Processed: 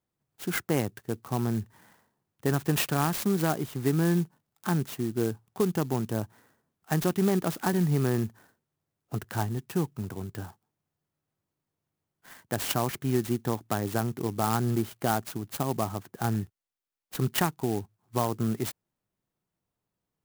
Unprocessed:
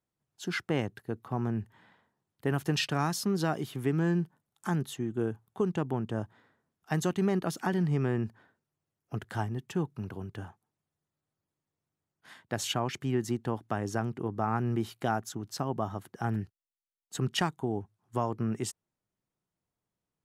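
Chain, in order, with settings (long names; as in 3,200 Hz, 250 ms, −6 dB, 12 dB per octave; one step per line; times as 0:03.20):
converter with an unsteady clock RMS 0.062 ms
level +3 dB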